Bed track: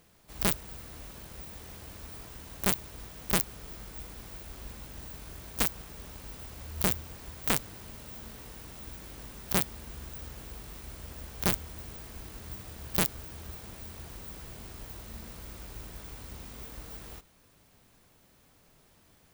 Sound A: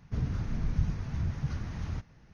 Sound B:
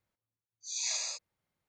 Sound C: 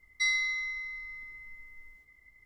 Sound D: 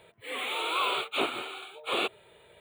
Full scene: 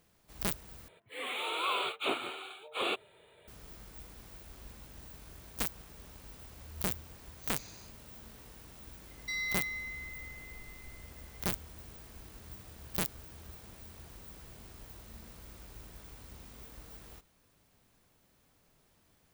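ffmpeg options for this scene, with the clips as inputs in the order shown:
-filter_complex "[0:a]volume=0.473[s0];[2:a]highshelf=f=5900:g=-10[s1];[3:a]alimiter=level_in=1.12:limit=0.0631:level=0:latency=1:release=71,volume=0.891[s2];[s0]asplit=2[s3][s4];[s3]atrim=end=0.884[s5];[4:a]atrim=end=2.6,asetpts=PTS-STARTPTS,volume=0.631[s6];[s4]atrim=start=3.476[s7];[s1]atrim=end=1.68,asetpts=PTS-STARTPTS,volume=0.158,afade=t=in:d=0.004:c=hsin,afade=t=out:st=1.676:d=0.004:c=hsin,adelay=297234S[s8];[s2]atrim=end=2.45,asetpts=PTS-STARTPTS,volume=0.631,afade=t=in:d=0.004:c=hsin,afade=t=out:st=2.446:d=0.004:c=hsin,adelay=9080[s9];[s5][s6]acrossfade=d=0.004:c1=hsin:c2=hsin[s10];[s10][s7]acrossfade=d=0.004:c1=hsin:c2=hsin[s11];[s11][s8][s9]amix=inputs=3:normalize=0"

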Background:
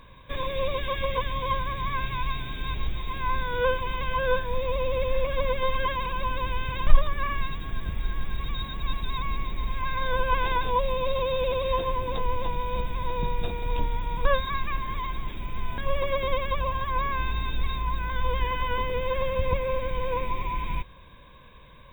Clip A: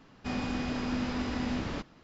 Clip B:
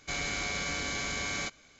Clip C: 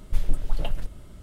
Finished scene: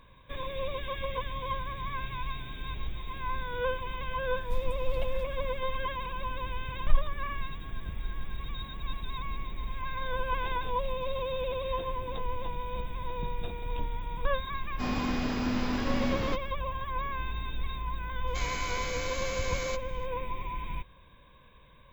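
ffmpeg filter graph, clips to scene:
-filter_complex "[3:a]asplit=2[s0][s1];[0:a]volume=0.473[s2];[s1]acompressor=threshold=0.0355:ratio=6:attack=3.2:release=140:knee=1:detection=peak[s3];[1:a]dynaudnorm=f=150:g=3:m=6.68[s4];[s0]atrim=end=1.22,asetpts=PTS-STARTPTS,volume=0.316,afade=t=in:d=0.004:c=hsin,afade=t=out:st=1.216:d=0.004:c=hsin,adelay=192717S[s5];[s3]atrim=end=1.22,asetpts=PTS-STARTPTS,volume=0.211,afade=t=in:d=0.004:c=hsin,afade=t=out:st=1.216:d=0.004:c=hsin,adelay=10200[s6];[s4]atrim=end=2.03,asetpts=PTS-STARTPTS,volume=0.188,afade=t=in:d=0.004:c=hsin,afade=t=out:st=2.026:d=0.004:c=hsin,adelay=14540[s7];[2:a]atrim=end=1.79,asetpts=PTS-STARTPTS,volume=0.631,afade=t=in:d=0.004:c=hsin,afade=t=out:st=1.786:d=0.004:c=hsin,adelay=18270[s8];[s2][s5][s6][s7][s8]amix=inputs=5:normalize=0"

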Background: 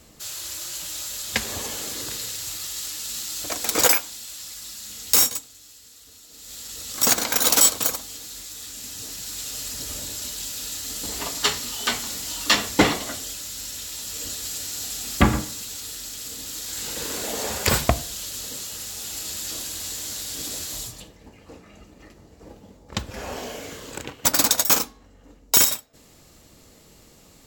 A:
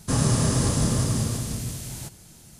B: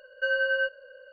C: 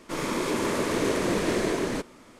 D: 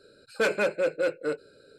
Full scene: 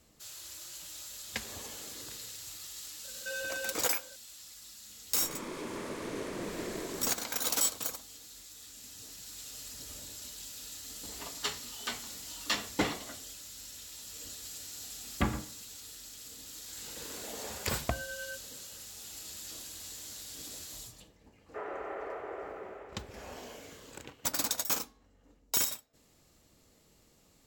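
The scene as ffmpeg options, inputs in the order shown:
-filter_complex "[2:a]asplit=2[s0][s1];[0:a]volume=0.224[s2];[s0]asoftclip=type=tanh:threshold=0.0335[s3];[1:a]highpass=f=280:t=q:w=0.5412,highpass=f=280:t=q:w=1.307,lowpass=f=2200:t=q:w=0.5176,lowpass=f=2200:t=q:w=0.7071,lowpass=f=2200:t=q:w=1.932,afreqshift=160[s4];[s3]atrim=end=1.12,asetpts=PTS-STARTPTS,volume=0.501,afade=t=in:d=0.004:c=hsin,afade=t=out:st=1.116:d=0.004:c=hsin,adelay=3040[s5];[3:a]atrim=end=2.39,asetpts=PTS-STARTPTS,volume=0.224,afade=t=in:d=0.004:c=hsin,afade=t=out:st=2.386:d=0.004:c=hsin,adelay=5110[s6];[s1]atrim=end=1.12,asetpts=PTS-STARTPTS,volume=0.15,afade=t=in:d=0.004:c=hsin,afade=t=out:st=1.116:d=0.004:c=hsin,adelay=17690[s7];[s4]atrim=end=2.59,asetpts=PTS-STARTPTS,volume=0.335,afade=t=in:d=0.004:c=hsin,afade=t=out:st=2.586:d=0.004:c=hsin,adelay=21460[s8];[s2][s5][s6][s7][s8]amix=inputs=5:normalize=0"

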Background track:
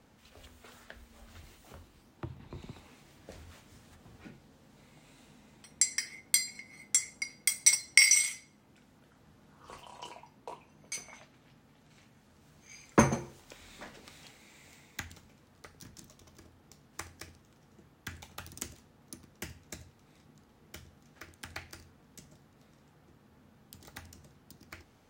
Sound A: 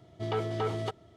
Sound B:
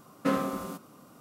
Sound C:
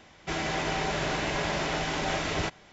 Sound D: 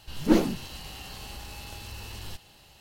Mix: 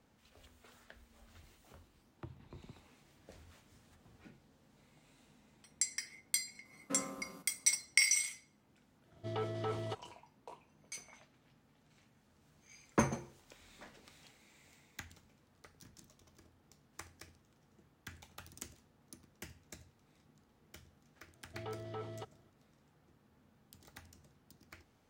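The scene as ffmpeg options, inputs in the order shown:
-filter_complex "[1:a]asplit=2[s0][s1];[0:a]volume=0.422[s2];[s1]highshelf=f=8100:g=-8.5[s3];[2:a]atrim=end=1.2,asetpts=PTS-STARTPTS,volume=0.188,afade=t=in:d=0.004:c=hsin,afade=t=out:st=1.196:d=0.004:c=hsin,adelay=6650[s4];[s0]atrim=end=1.16,asetpts=PTS-STARTPTS,volume=0.447,afade=t=in:d=0.1,afade=t=out:st=1.06:d=0.1,adelay=9040[s5];[s3]atrim=end=1.16,asetpts=PTS-STARTPTS,volume=0.224,afade=t=in:d=0.004:c=hsin,afade=t=out:st=1.156:d=0.004:c=hsin,adelay=21340[s6];[s2][s4][s5][s6]amix=inputs=4:normalize=0"

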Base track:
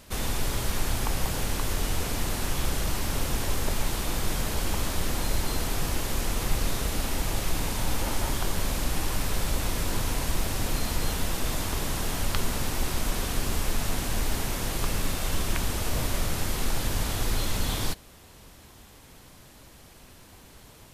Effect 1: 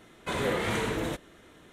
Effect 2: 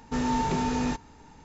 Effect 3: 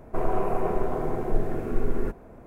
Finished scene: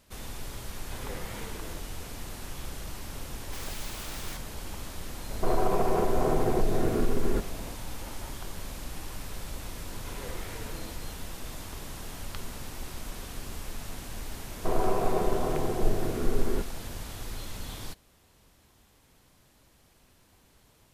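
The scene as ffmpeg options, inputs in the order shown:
-filter_complex "[1:a]asplit=2[s0][s1];[3:a]asplit=2[s2][s3];[0:a]volume=0.282[s4];[s0]aeval=exprs='if(lt(val(0),0),0.447*val(0),val(0))':c=same[s5];[2:a]aeval=exprs='(mod(35.5*val(0)+1,2)-1)/35.5':c=same[s6];[s2]alimiter=level_in=8.41:limit=0.891:release=50:level=0:latency=1[s7];[s3]aresample=32000,aresample=44100[s8];[s5]atrim=end=1.72,asetpts=PTS-STARTPTS,volume=0.282,afade=t=in:d=0.004:c=hsin,afade=t=out:st=1.716:d=0.004:c=hsin,adelay=640[s9];[s6]atrim=end=1.44,asetpts=PTS-STARTPTS,volume=0.447,afade=t=in:d=0.004:c=hsin,afade=t=out:st=1.436:d=0.004:c=hsin,adelay=150381S[s10];[s7]atrim=end=2.46,asetpts=PTS-STARTPTS,volume=0.188,afade=t=in:d=0.004:c=hsin,afade=t=out:st=2.456:d=0.004:c=hsin,adelay=233289S[s11];[s1]atrim=end=1.72,asetpts=PTS-STARTPTS,volume=0.188,afade=t=in:d=0.004:c=hsin,afade=t=out:st=1.716:d=0.004:c=hsin,adelay=431298S[s12];[s8]atrim=end=2.46,asetpts=PTS-STARTPTS,volume=0.891,afade=t=in:d=0.004:c=hsin,afade=t=out:st=2.456:d=0.004:c=hsin,adelay=14510[s13];[s4][s9][s10][s11][s12][s13]amix=inputs=6:normalize=0"

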